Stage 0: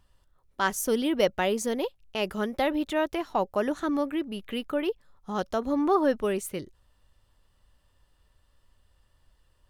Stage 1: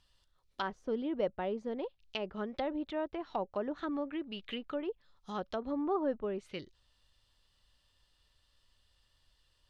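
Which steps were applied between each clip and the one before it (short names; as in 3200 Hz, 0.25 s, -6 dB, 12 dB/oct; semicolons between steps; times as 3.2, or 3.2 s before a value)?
bell 4100 Hz +14.5 dB 1.8 oct; treble ducked by the level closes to 900 Hz, closed at -22 dBFS; gain -9 dB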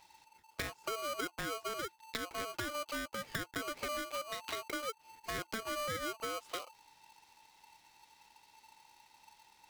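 compressor 5:1, threshold -45 dBFS, peak gain reduction 16 dB; polarity switched at an audio rate 890 Hz; gain +7.5 dB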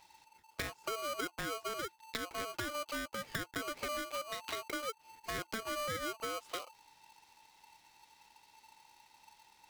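nothing audible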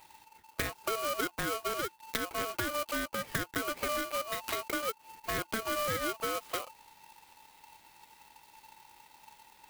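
clock jitter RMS 0.039 ms; gain +5.5 dB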